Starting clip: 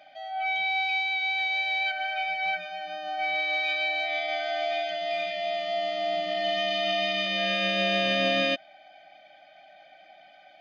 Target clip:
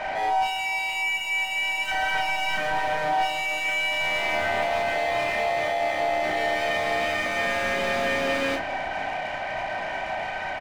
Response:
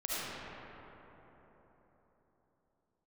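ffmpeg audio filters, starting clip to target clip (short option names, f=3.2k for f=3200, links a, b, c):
-filter_complex "[0:a]bandreject=f=60:t=h:w=6,bandreject=f=120:t=h:w=6,bandreject=f=180:t=h:w=6,bandreject=f=240:t=h:w=6,bandreject=f=300:t=h:w=6,bandreject=f=360:t=h:w=6,bandreject=f=420:t=h:w=6,bandreject=f=480:t=h:w=6,asplit=2[a][b];[b]acrusher=bits=4:mode=log:mix=0:aa=0.000001,volume=-10dB[c];[a][c]amix=inputs=2:normalize=0,lowpass=f=1.9k:t=q:w=2.7,asoftclip=type=tanh:threshold=-27dB,asplit=2[d][e];[e]highpass=f=720:p=1,volume=27dB,asoftclip=type=tanh:threshold=-27dB[f];[d][f]amix=inputs=2:normalize=0,lowpass=f=1.2k:p=1,volume=-6dB,asplit=4[g][h][i][j];[h]asetrate=37084,aresample=44100,atempo=1.18921,volume=-17dB[k];[i]asetrate=52444,aresample=44100,atempo=0.840896,volume=-15dB[l];[j]asetrate=55563,aresample=44100,atempo=0.793701,volume=-8dB[m];[g][k][l][m]amix=inputs=4:normalize=0,asplit=2[n][o];[o]adelay=33,volume=-4dB[p];[n][p]amix=inputs=2:normalize=0,asplit=2[q][r];[1:a]atrim=start_sample=2205[s];[r][s]afir=irnorm=-1:irlink=0,volume=-21dB[t];[q][t]amix=inputs=2:normalize=0,volume=5dB"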